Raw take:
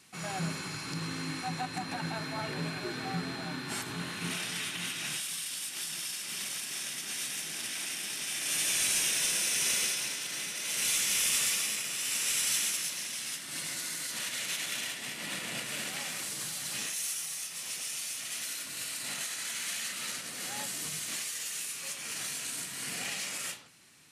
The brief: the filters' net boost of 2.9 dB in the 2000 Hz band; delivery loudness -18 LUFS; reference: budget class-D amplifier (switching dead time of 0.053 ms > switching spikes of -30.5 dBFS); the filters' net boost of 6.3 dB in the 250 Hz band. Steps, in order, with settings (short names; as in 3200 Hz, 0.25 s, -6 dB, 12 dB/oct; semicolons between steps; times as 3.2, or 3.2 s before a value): bell 250 Hz +8.5 dB; bell 2000 Hz +3.5 dB; switching dead time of 0.053 ms; switching spikes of -30.5 dBFS; gain +13.5 dB